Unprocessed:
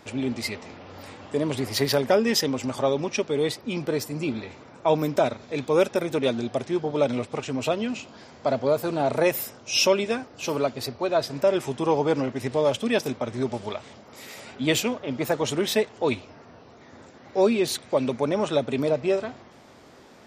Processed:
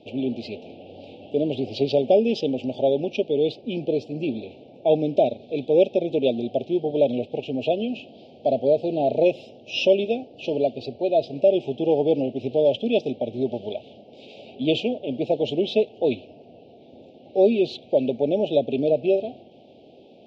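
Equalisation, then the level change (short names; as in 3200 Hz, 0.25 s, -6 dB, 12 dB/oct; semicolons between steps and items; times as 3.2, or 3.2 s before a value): HPF 270 Hz 6 dB/oct; inverse Chebyshev band-stop 1000–2000 Hz, stop band 40 dB; LPF 3100 Hz 24 dB/oct; +4.5 dB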